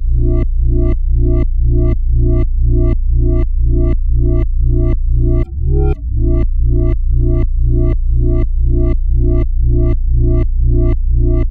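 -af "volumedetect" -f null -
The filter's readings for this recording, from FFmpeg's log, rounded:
mean_volume: -10.7 dB
max_volume: -2.1 dB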